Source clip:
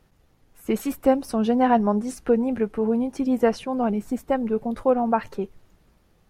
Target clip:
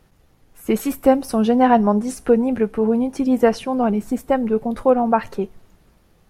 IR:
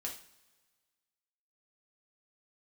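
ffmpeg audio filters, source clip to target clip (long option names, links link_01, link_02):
-filter_complex "[0:a]asplit=2[link_01][link_02];[link_02]equalizer=frequency=11000:width=0.94:gain=14.5[link_03];[1:a]atrim=start_sample=2205[link_04];[link_03][link_04]afir=irnorm=-1:irlink=0,volume=-18.5dB[link_05];[link_01][link_05]amix=inputs=2:normalize=0,volume=4dB"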